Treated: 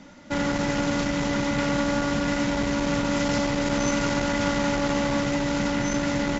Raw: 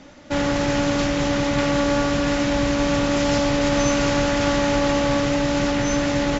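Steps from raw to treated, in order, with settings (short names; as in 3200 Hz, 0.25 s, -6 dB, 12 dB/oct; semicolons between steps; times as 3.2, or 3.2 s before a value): high shelf 6600 Hz +5.5 dB; small resonant body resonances 200/950/1400/2000 Hz, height 9 dB, ringing for 45 ms; core saturation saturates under 300 Hz; gain -5 dB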